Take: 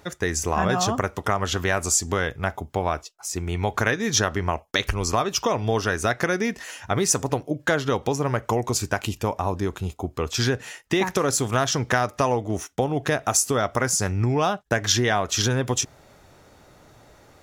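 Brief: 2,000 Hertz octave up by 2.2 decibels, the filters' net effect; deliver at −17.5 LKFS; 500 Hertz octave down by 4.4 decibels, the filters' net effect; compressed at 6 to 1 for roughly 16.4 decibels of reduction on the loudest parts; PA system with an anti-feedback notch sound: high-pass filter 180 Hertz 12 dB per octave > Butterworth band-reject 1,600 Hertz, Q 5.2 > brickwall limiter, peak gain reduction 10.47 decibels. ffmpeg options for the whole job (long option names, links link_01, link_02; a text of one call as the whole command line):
ffmpeg -i in.wav -af "equalizer=frequency=500:width_type=o:gain=-6,equalizer=frequency=2000:width_type=o:gain=7.5,acompressor=threshold=-33dB:ratio=6,highpass=180,asuperstop=centerf=1600:order=8:qfactor=5.2,volume=22.5dB,alimiter=limit=-5.5dB:level=0:latency=1" out.wav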